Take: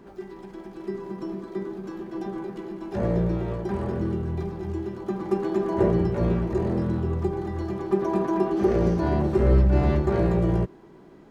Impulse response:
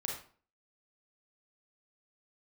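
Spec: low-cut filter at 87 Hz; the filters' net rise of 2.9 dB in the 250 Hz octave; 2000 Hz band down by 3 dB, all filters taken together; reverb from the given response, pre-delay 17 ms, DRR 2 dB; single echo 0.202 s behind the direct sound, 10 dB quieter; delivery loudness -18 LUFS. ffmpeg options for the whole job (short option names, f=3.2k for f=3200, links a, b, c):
-filter_complex "[0:a]highpass=87,equalizer=f=250:t=o:g=5,equalizer=f=2k:t=o:g=-4,aecho=1:1:202:0.316,asplit=2[a][b];[1:a]atrim=start_sample=2205,adelay=17[c];[b][c]afir=irnorm=-1:irlink=0,volume=-3.5dB[d];[a][d]amix=inputs=2:normalize=0,volume=2dB"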